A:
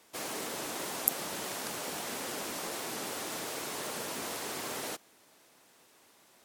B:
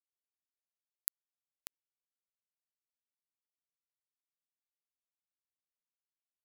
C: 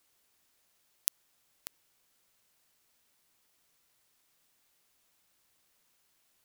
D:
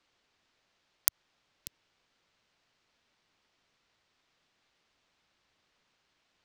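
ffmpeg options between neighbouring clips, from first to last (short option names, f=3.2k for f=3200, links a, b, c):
-af "acompressor=threshold=-40dB:ratio=12,acrusher=bits=4:mix=0:aa=0.000001,volume=10dB"
-filter_complex "[0:a]asplit=2[a][b];[b]alimiter=limit=-15.5dB:level=0:latency=1:release=36,volume=2dB[c];[a][c]amix=inputs=2:normalize=0,aeval=exprs='0.668*sin(PI/2*3.55*val(0)/0.668)':c=same,volume=2dB"
-filter_complex "[0:a]acrossover=split=110|5500[a][b][c];[b]alimiter=level_in=1.5dB:limit=-24dB:level=0:latency=1:release=69,volume=-1.5dB[d];[c]acrusher=bits=3:dc=4:mix=0:aa=0.000001[e];[a][d][e]amix=inputs=3:normalize=0,volume=3dB"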